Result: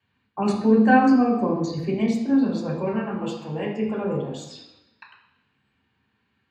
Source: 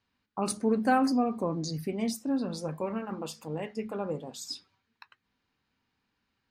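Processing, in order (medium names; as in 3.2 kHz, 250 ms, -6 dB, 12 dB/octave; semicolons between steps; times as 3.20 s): bass shelf 120 Hz +5 dB; reverberation RT60 0.90 s, pre-delay 3 ms, DRR -4.5 dB; trim -8 dB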